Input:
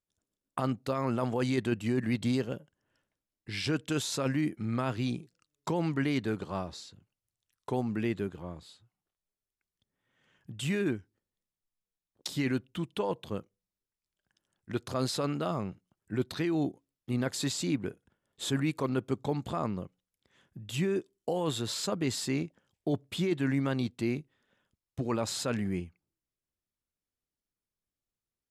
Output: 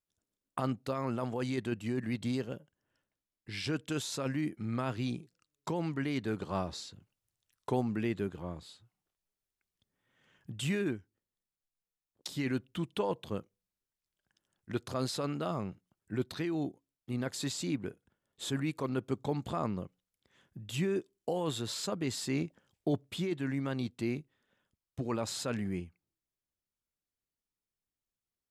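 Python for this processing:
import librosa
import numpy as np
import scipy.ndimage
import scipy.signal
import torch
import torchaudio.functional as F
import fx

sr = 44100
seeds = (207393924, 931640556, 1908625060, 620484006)

y = fx.rider(x, sr, range_db=10, speed_s=0.5)
y = y * 10.0 ** (-2.5 / 20.0)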